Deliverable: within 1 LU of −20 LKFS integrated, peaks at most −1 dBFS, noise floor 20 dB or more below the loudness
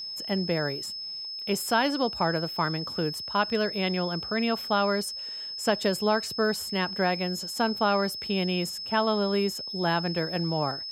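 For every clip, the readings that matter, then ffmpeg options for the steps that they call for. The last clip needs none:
interfering tone 5,200 Hz; level of the tone −34 dBFS; integrated loudness −27.5 LKFS; sample peak −10.0 dBFS; target loudness −20.0 LKFS
→ -af "bandreject=frequency=5200:width=30"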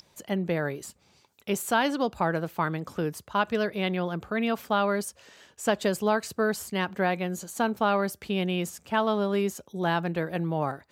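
interfering tone none found; integrated loudness −28.0 LKFS; sample peak −10.5 dBFS; target loudness −20.0 LKFS
→ -af "volume=8dB"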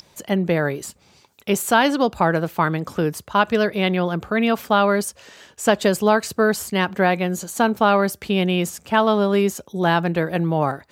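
integrated loudness −20.0 LKFS; sample peak −2.5 dBFS; background noise floor −56 dBFS

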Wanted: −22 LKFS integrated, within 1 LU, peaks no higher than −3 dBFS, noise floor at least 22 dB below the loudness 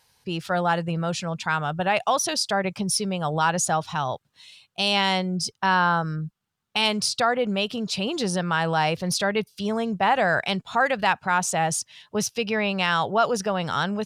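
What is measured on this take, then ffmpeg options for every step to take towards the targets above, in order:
integrated loudness −24.0 LKFS; sample peak −9.0 dBFS; target loudness −22.0 LKFS
→ -af "volume=2dB"

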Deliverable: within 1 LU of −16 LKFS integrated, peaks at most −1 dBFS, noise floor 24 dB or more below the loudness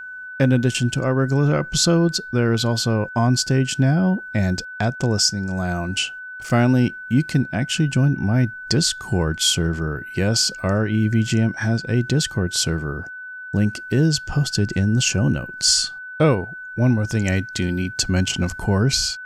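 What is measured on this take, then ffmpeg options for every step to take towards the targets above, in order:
interfering tone 1,500 Hz; level of the tone −32 dBFS; integrated loudness −20.0 LKFS; sample peak −3.5 dBFS; target loudness −16.0 LKFS
→ -af "bandreject=frequency=1500:width=30"
-af "volume=4dB,alimiter=limit=-1dB:level=0:latency=1"

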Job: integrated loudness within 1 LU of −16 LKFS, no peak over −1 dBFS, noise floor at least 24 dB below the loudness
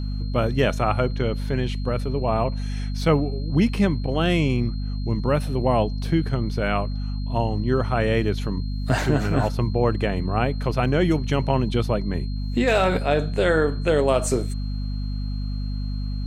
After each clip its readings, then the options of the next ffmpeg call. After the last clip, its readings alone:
mains hum 50 Hz; hum harmonics up to 250 Hz; level of the hum −24 dBFS; interfering tone 4,200 Hz; level of the tone −45 dBFS; integrated loudness −23.5 LKFS; sample peak −6.5 dBFS; target loudness −16.0 LKFS
→ -af "bandreject=frequency=50:width_type=h:width=6,bandreject=frequency=100:width_type=h:width=6,bandreject=frequency=150:width_type=h:width=6,bandreject=frequency=200:width_type=h:width=6,bandreject=frequency=250:width_type=h:width=6"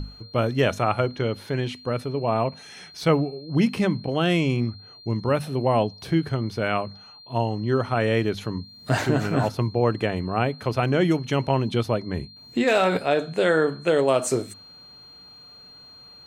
mains hum none found; interfering tone 4,200 Hz; level of the tone −45 dBFS
→ -af "bandreject=frequency=4200:width=30"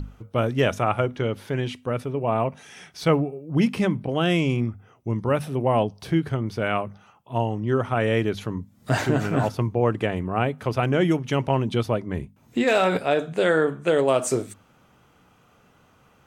interfering tone none found; integrated loudness −24.0 LKFS; sample peak −6.5 dBFS; target loudness −16.0 LKFS
→ -af "volume=8dB,alimiter=limit=-1dB:level=0:latency=1"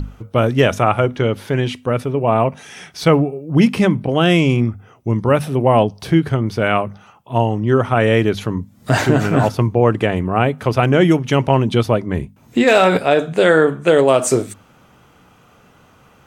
integrated loudness −16.5 LKFS; sample peak −1.0 dBFS; background noise floor −50 dBFS

